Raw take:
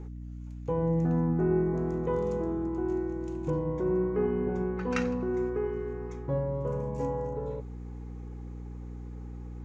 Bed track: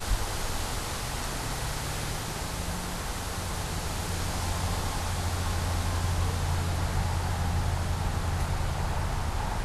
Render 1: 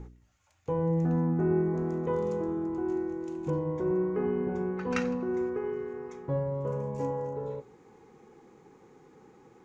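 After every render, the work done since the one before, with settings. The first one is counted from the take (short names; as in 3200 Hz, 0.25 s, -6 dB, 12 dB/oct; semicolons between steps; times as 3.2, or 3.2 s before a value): de-hum 60 Hz, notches 11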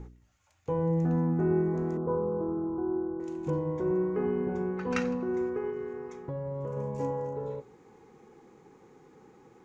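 1.97–3.2 steep low-pass 1400 Hz 48 dB/oct; 5.7–6.77 compressor, threshold -31 dBFS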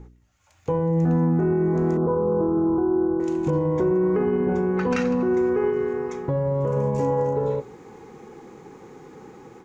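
limiter -26.5 dBFS, peak gain reduction 10 dB; AGC gain up to 12 dB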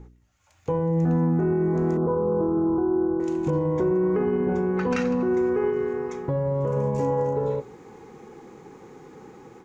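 gain -1.5 dB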